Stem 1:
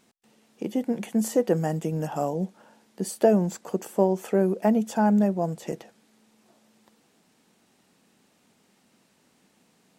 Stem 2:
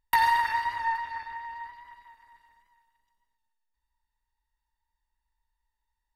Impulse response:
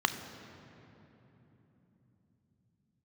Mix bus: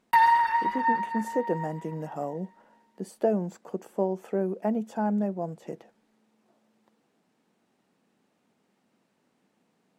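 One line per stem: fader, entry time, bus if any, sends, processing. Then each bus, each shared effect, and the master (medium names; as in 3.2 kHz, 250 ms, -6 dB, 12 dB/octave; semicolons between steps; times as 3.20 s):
-4.5 dB, 0.00 s, no send, none
+0.5 dB, 0.00 s, no send, comb 5.5 ms, depth 77%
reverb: none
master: high-pass 150 Hz 6 dB/octave; treble shelf 2.7 kHz -11.5 dB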